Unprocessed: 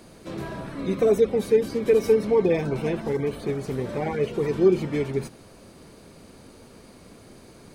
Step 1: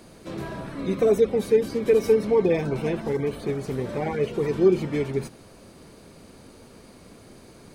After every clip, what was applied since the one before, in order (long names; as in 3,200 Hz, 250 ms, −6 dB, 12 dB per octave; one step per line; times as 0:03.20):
no processing that can be heard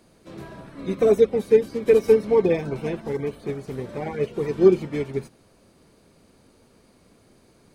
expander for the loud parts 1.5 to 1, over −38 dBFS
level +4 dB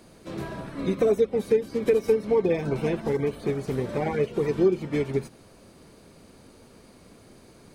downward compressor 2.5 to 1, threshold −28 dBFS, peak gain reduction 12.5 dB
level +5 dB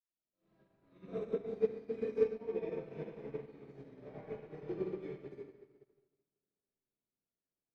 convolution reverb RT60 3.2 s, pre-delay 48 ms
expander for the loud parts 2.5 to 1, over −54 dBFS
level +3 dB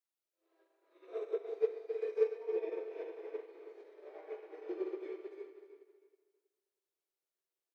linear-phase brick-wall high-pass 310 Hz
repeating echo 320 ms, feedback 26%, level −11 dB